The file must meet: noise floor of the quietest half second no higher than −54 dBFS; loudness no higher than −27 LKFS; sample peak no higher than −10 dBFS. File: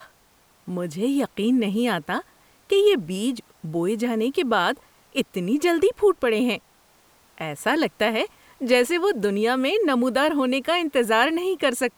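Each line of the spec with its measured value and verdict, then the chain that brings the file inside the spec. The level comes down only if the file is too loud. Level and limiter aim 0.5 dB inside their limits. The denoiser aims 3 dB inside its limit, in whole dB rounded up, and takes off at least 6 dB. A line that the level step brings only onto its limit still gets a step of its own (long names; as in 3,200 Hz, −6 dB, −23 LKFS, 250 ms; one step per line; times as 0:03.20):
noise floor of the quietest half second −59 dBFS: in spec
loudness −22.5 LKFS: out of spec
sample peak −6.0 dBFS: out of spec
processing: level −5 dB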